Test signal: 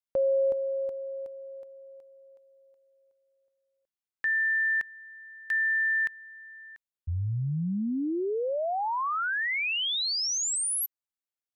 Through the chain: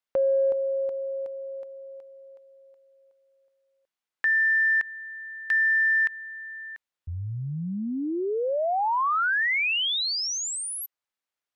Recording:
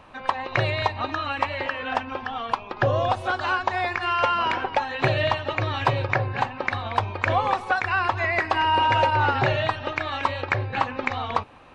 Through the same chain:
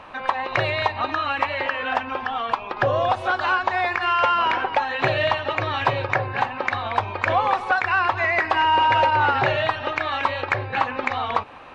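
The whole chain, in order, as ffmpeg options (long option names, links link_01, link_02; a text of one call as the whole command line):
ffmpeg -i in.wav -filter_complex "[0:a]asplit=2[link_01][link_02];[link_02]acompressor=threshold=-38dB:ratio=6:attack=10:release=66:detection=rms,volume=-1dB[link_03];[link_01][link_03]amix=inputs=2:normalize=0,asplit=2[link_04][link_05];[link_05]highpass=frequency=720:poles=1,volume=8dB,asoftclip=type=tanh:threshold=-7dB[link_06];[link_04][link_06]amix=inputs=2:normalize=0,lowpass=frequency=2700:poles=1,volume=-6dB" out.wav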